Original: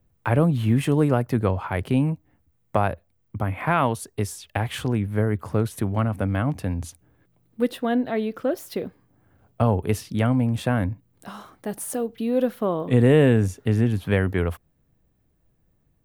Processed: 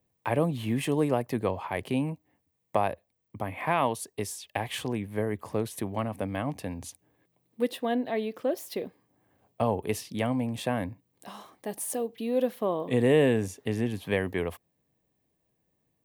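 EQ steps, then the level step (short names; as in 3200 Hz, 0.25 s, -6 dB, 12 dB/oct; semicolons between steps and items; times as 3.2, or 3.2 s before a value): HPF 380 Hz 6 dB/oct; bell 1400 Hz -13.5 dB 0.27 oct; -1.5 dB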